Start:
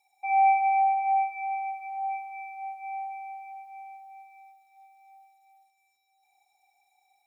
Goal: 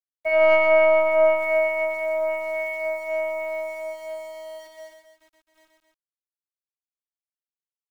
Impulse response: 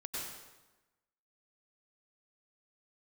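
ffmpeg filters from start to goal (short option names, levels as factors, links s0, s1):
-filter_complex "[0:a]afftdn=nr=22:nf=-38,asplit=2[s0][s1];[s1]acompressor=threshold=0.02:ratio=12,volume=0.708[s2];[s0][s2]amix=inputs=2:normalize=0,afftfilt=real='hypot(re,im)*cos(PI*b)':imag='0':win_size=512:overlap=0.75,equalizer=f=1700:t=o:w=0.64:g=5.5,asetrate=40517,aresample=44100,aeval=exprs='val(0)*gte(abs(val(0)),0.00188)':c=same,dynaudnorm=f=120:g=3:m=4.73,agate=range=0.355:threshold=0.00794:ratio=16:detection=peak,aeval=exprs='0.631*(cos(1*acos(clip(val(0)/0.631,-1,1)))-cos(1*PI/2))+0.0794*(cos(2*acos(clip(val(0)/0.631,-1,1)))-cos(2*PI/2))+0.00794*(cos(5*acos(clip(val(0)/0.631,-1,1)))-cos(5*PI/2))':c=same,asplit=2[s3][s4];[s4]aecho=0:1:125.4|265.3:0.631|0.398[s5];[s3][s5]amix=inputs=2:normalize=0,volume=0.668"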